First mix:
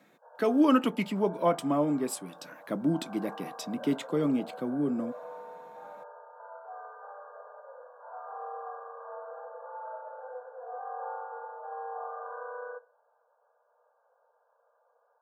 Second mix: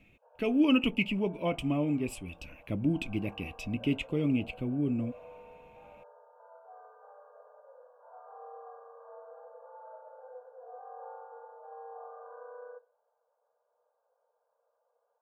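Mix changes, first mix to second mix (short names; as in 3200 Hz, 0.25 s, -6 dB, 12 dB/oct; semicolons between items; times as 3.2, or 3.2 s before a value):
speech: remove steep high-pass 150 Hz 48 dB/oct; master: add EQ curve 230 Hz 0 dB, 1700 Hz -14 dB, 2600 Hz +14 dB, 3800 Hz -9 dB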